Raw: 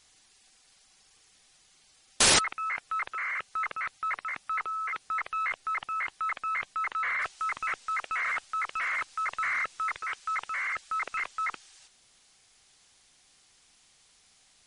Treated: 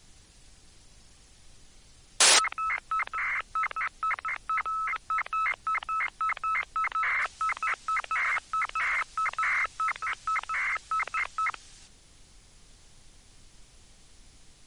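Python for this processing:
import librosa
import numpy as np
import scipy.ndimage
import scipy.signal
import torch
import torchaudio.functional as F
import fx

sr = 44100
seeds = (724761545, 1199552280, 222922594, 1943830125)

p1 = scipy.signal.sosfilt(scipy.signal.butter(2, 520.0, 'highpass', fs=sr, output='sos'), x)
p2 = fx.dmg_noise_colour(p1, sr, seeds[0], colour='brown', level_db=-57.0)
p3 = np.clip(p2, -10.0 ** (-19.0 / 20.0), 10.0 ** (-19.0 / 20.0))
y = p2 + F.gain(torch.from_numpy(p3), -10.0).numpy()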